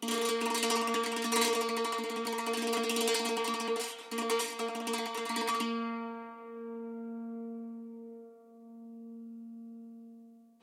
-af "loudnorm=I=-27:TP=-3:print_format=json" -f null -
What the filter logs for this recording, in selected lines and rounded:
"input_i" : "-33.1",
"input_tp" : "-14.8",
"input_lra" : "18.1",
"input_thresh" : "-45.4",